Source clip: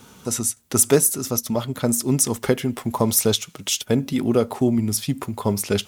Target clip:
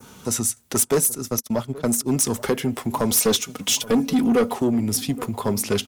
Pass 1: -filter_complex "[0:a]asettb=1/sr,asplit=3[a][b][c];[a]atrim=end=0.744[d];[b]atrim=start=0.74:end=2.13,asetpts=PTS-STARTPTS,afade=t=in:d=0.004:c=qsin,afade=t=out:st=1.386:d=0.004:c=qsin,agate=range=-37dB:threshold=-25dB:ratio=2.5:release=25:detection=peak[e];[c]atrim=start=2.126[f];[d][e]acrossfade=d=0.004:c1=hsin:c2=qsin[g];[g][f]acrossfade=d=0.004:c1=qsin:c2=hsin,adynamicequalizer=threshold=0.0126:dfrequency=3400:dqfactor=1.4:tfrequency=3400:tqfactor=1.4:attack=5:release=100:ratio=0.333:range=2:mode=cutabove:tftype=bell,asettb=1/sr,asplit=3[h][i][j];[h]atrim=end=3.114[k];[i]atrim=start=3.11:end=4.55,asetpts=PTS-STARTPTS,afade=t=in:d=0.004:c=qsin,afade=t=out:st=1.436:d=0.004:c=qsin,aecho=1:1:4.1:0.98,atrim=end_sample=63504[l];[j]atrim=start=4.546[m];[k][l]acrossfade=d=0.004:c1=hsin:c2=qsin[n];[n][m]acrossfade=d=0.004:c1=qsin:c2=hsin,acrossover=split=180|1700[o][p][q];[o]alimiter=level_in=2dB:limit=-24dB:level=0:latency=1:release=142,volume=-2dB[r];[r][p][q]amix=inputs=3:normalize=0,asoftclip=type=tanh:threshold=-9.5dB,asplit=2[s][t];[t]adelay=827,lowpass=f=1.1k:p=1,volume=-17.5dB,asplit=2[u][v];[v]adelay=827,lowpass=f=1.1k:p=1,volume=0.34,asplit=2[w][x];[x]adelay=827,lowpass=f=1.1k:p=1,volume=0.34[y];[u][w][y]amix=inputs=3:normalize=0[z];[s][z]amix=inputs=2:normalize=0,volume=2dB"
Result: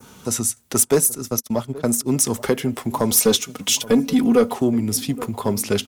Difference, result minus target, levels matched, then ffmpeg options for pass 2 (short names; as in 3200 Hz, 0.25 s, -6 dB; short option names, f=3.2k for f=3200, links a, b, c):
soft clip: distortion -6 dB
-filter_complex "[0:a]asettb=1/sr,asplit=3[a][b][c];[a]atrim=end=0.744[d];[b]atrim=start=0.74:end=2.13,asetpts=PTS-STARTPTS,afade=t=in:d=0.004:c=qsin,afade=t=out:st=1.386:d=0.004:c=qsin,agate=range=-37dB:threshold=-25dB:ratio=2.5:release=25:detection=peak[e];[c]atrim=start=2.126[f];[d][e]acrossfade=d=0.004:c1=hsin:c2=qsin[g];[g][f]acrossfade=d=0.004:c1=qsin:c2=hsin,adynamicequalizer=threshold=0.0126:dfrequency=3400:dqfactor=1.4:tfrequency=3400:tqfactor=1.4:attack=5:release=100:ratio=0.333:range=2:mode=cutabove:tftype=bell,asettb=1/sr,asplit=3[h][i][j];[h]atrim=end=3.114[k];[i]atrim=start=3.11:end=4.55,asetpts=PTS-STARTPTS,afade=t=in:d=0.004:c=qsin,afade=t=out:st=1.436:d=0.004:c=qsin,aecho=1:1:4.1:0.98,atrim=end_sample=63504[l];[j]atrim=start=4.546[m];[k][l]acrossfade=d=0.004:c1=hsin:c2=qsin[n];[n][m]acrossfade=d=0.004:c1=qsin:c2=hsin,acrossover=split=180|1700[o][p][q];[o]alimiter=level_in=2dB:limit=-24dB:level=0:latency=1:release=142,volume=-2dB[r];[r][p][q]amix=inputs=3:normalize=0,asoftclip=type=tanh:threshold=-15.5dB,asplit=2[s][t];[t]adelay=827,lowpass=f=1.1k:p=1,volume=-17.5dB,asplit=2[u][v];[v]adelay=827,lowpass=f=1.1k:p=1,volume=0.34,asplit=2[w][x];[x]adelay=827,lowpass=f=1.1k:p=1,volume=0.34[y];[u][w][y]amix=inputs=3:normalize=0[z];[s][z]amix=inputs=2:normalize=0,volume=2dB"